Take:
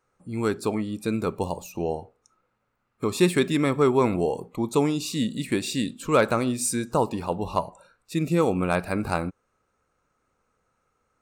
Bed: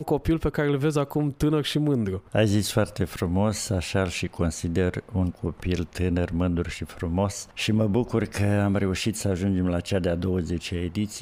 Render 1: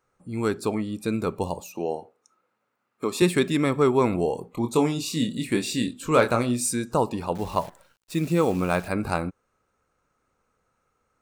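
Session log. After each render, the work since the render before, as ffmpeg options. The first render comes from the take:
-filter_complex "[0:a]asettb=1/sr,asplit=3[a][b][c];[a]atrim=end=1.604[d];[b]atrim=start=1.6:end=3.22,asetpts=PTS-STARTPTS,afade=t=in:d=0.004:c=qsin,afade=t=out:st=1.616:d=0.004:c=qsin,highpass=220[e];[c]atrim=start=3.216[f];[d][e]acrossfade=d=0.004:c1=hsin:c2=qsin[g];[g][f]acrossfade=d=0.004:c1=qsin:c2=hsin,asettb=1/sr,asplit=3[h][i][j];[h]atrim=end=4.514[k];[i]atrim=start=4.51:end=6.61,asetpts=PTS-STARTPTS,afade=t=in:d=0.004:c=qsin,afade=t=out:st=2.096:d=0.004:c=qsin,asplit=2[l][m];[m]adelay=25,volume=-6.5dB[n];[l][n]amix=inputs=2:normalize=0,atrim=end_sample=92610[o];[j]atrim=start=6.606[p];[k][o]acrossfade=d=0.004:c1=hsin:c2=qsin[q];[q][p]acrossfade=d=0.004:c1=qsin:c2=hsin,asettb=1/sr,asplit=3[r][s][t];[r]atrim=end=7.354[u];[s]atrim=start=7.35:end=8.88,asetpts=PTS-STARTPTS,afade=t=in:d=0.004:c=qsin,afade=t=out:st=1.526:d=0.004:c=qsin,acrusher=bits=8:dc=4:mix=0:aa=0.000001[v];[t]atrim=start=8.876[w];[u][v]acrossfade=d=0.004:c1=hsin:c2=qsin[x];[x][w]acrossfade=d=0.004:c1=qsin:c2=hsin"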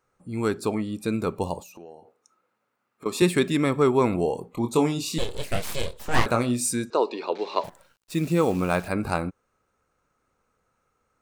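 -filter_complex "[0:a]asettb=1/sr,asplit=3[a][b][c];[a]atrim=end=1.624[d];[b]atrim=start=1.62:end=3.06,asetpts=PTS-STARTPTS,afade=t=in:d=0.004:c=qsin,afade=t=out:st=1.436:d=0.004:c=qsin,acompressor=threshold=-45dB:ratio=3:attack=3.2:release=140:knee=1:detection=peak[e];[c]atrim=start=3.056[f];[d][e]acrossfade=d=0.004:c1=hsin:c2=qsin[g];[g][f]acrossfade=d=0.004:c1=qsin:c2=hsin,asettb=1/sr,asplit=3[h][i][j];[h]atrim=end=5.184[k];[i]atrim=start=5.18:end=6.26,asetpts=PTS-STARTPTS,afade=t=in:d=0.004:c=qsin,afade=t=out:st=1.076:d=0.004:c=qsin,aeval=exprs='abs(val(0))':c=same[l];[j]atrim=start=6.256[m];[k][l]acrossfade=d=0.004:c1=hsin:c2=qsin[n];[n][m]acrossfade=d=0.004:c1=qsin:c2=hsin,asettb=1/sr,asplit=3[o][p][q];[o]atrim=end=6.904[r];[p]atrim=start=6.9:end=7.64,asetpts=PTS-STARTPTS,afade=t=in:d=0.004:c=qsin,afade=t=out:st=0.736:d=0.004:c=qsin,highpass=f=320:w=0.5412,highpass=f=320:w=1.3066,equalizer=f=400:t=q:w=4:g=6,equalizer=f=790:t=q:w=4:g=-4,equalizer=f=2.3k:t=q:w=4:g=7,equalizer=f=4k:t=q:w=4:g=8,lowpass=f=5.4k:w=0.5412,lowpass=f=5.4k:w=1.3066[s];[q]atrim=start=7.636[t];[r][s]acrossfade=d=0.004:c1=hsin:c2=qsin[u];[u][t]acrossfade=d=0.004:c1=qsin:c2=hsin"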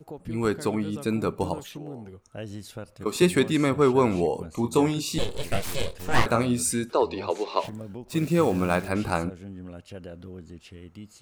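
-filter_complex "[1:a]volume=-16dB[a];[0:a][a]amix=inputs=2:normalize=0"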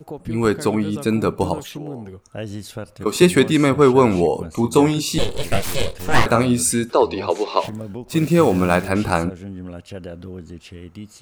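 -af "volume=7dB,alimiter=limit=-2dB:level=0:latency=1"

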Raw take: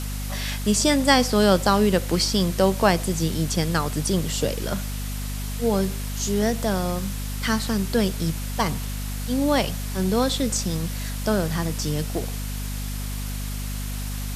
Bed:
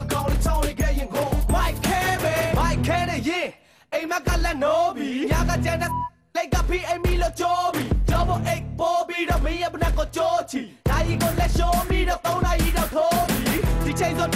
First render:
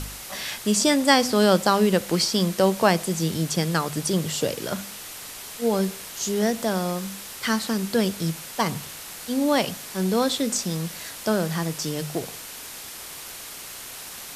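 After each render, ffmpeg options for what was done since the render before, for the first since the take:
-af "bandreject=f=50:t=h:w=4,bandreject=f=100:t=h:w=4,bandreject=f=150:t=h:w=4,bandreject=f=200:t=h:w=4,bandreject=f=250:t=h:w=4"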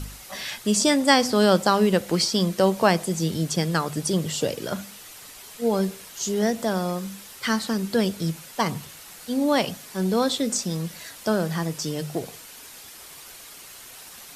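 -af "afftdn=nr=7:nf=-39"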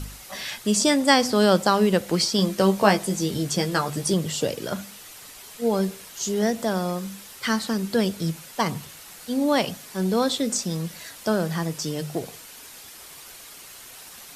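-filter_complex "[0:a]asettb=1/sr,asplit=3[a][b][c];[a]atrim=end=2.374[d];[b]atrim=start=2.37:end=4.14,asetpts=PTS-STARTPTS,afade=t=in:d=0.004:c=qsin,afade=t=out:st=1.766:d=0.004:c=qsin,asplit=2[e][f];[f]adelay=15,volume=-5dB[g];[e][g]amix=inputs=2:normalize=0,atrim=end_sample=78057[h];[c]atrim=start=4.136[i];[d][h]acrossfade=d=0.004:c1=hsin:c2=qsin[j];[j][i]acrossfade=d=0.004:c1=qsin:c2=hsin"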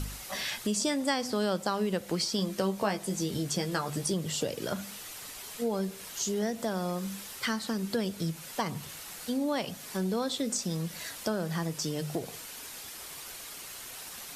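-af "acompressor=threshold=-31dB:ratio=2.5"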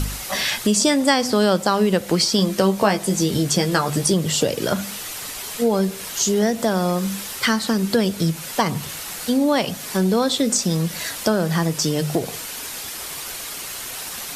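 -af "volume=12dB,alimiter=limit=-3dB:level=0:latency=1"

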